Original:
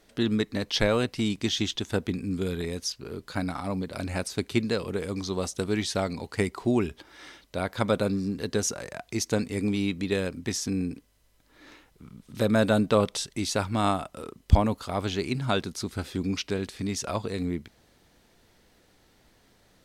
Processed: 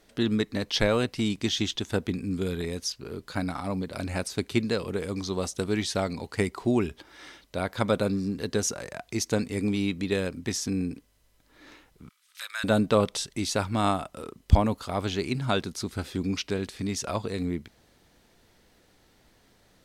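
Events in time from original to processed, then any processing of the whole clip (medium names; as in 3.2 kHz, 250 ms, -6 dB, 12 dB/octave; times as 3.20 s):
12.09–12.64 s: high-pass 1.4 kHz 24 dB/octave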